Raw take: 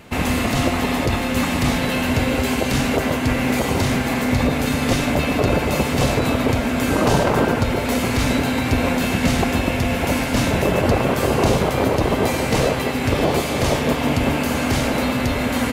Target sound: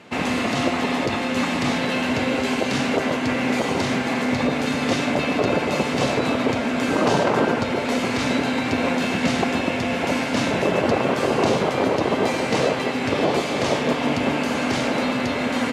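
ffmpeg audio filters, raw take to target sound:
ffmpeg -i in.wav -af "highpass=180,lowpass=6400,volume=-1dB" out.wav

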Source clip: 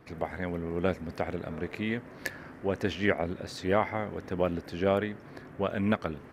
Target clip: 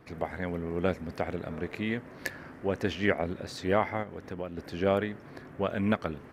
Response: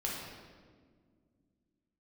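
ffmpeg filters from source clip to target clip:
-filter_complex "[0:a]asplit=3[link_01][link_02][link_03];[link_01]afade=type=out:start_time=4.02:duration=0.02[link_04];[link_02]acompressor=threshold=-37dB:ratio=2.5,afade=type=in:start_time=4.02:duration=0.02,afade=type=out:start_time=4.57:duration=0.02[link_05];[link_03]afade=type=in:start_time=4.57:duration=0.02[link_06];[link_04][link_05][link_06]amix=inputs=3:normalize=0"

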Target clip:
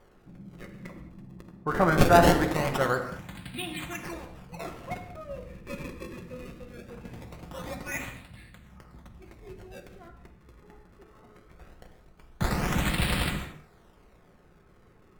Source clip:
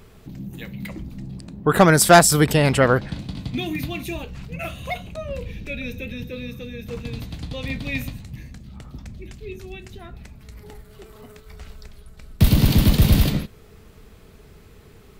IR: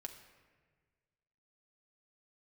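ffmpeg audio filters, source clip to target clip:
-filter_complex "[0:a]tiltshelf=frequency=780:gain=-6,acrossover=split=1800[link_01][link_02];[link_02]acrusher=samples=33:mix=1:aa=0.000001:lfo=1:lforange=52.8:lforate=0.21[link_03];[link_01][link_03]amix=inputs=2:normalize=0[link_04];[1:a]atrim=start_sample=2205,afade=type=out:start_time=0.24:duration=0.01,atrim=end_sample=11025,asetrate=36603,aresample=44100[link_05];[link_04][link_05]afir=irnorm=-1:irlink=0,volume=-4dB"

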